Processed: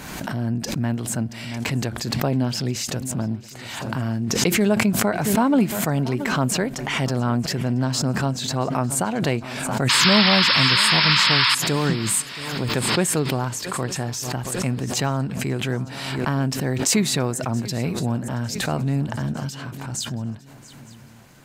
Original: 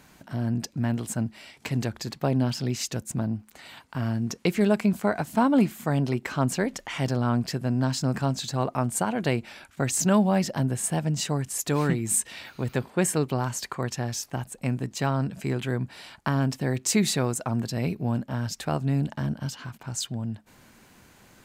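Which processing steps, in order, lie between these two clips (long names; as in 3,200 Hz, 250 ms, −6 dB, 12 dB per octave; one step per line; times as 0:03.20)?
sound drawn into the spectrogram noise, 0:09.89–0:11.55, 870–5,400 Hz −20 dBFS
feedback echo with a long and a short gap by turns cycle 902 ms, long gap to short 3 to 1, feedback 40%, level −19 dB
background raised ahead of every attack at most 36 dB per second
level +2 dB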